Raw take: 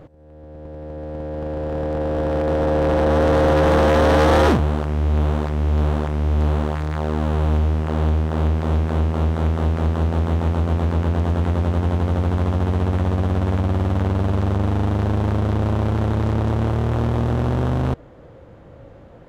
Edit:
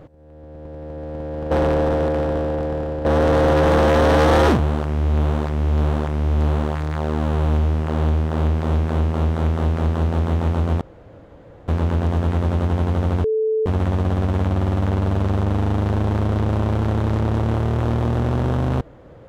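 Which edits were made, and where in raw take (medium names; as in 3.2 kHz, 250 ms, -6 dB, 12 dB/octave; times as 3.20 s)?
1.51–3.05 s: reverse
10.81 s: insert room tone 0.87 s
12.37–12.79 s: bleep 438 Hz -16.5 dBFS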